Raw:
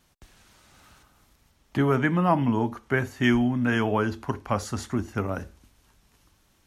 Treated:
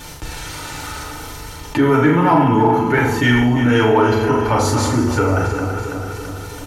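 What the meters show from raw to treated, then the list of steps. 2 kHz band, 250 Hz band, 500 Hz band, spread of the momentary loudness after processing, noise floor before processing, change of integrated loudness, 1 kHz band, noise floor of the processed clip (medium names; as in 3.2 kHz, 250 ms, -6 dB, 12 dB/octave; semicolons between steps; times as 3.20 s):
+9.5 dB, +9.0 dB, +12.0 dB, 16 LU, -65 dBFS, +10.0 dB, +12.5 dB, -33 dBFS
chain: backward echo that repeats 166 ms, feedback 63%, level -9.5 dB; comb 2.2 ms, depth 36%; on a send: flutter echo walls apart 7 m, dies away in 0.4 s; on the sum: FDN reverb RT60 0.31 s, low-frequency decay 1×, high-frequency decay 0.85×, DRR -3 dB; in parallel at -9 dB: saturation -17 dBFS, distortion -9 dB; on the sum: level flattener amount 50%; trim -1 dB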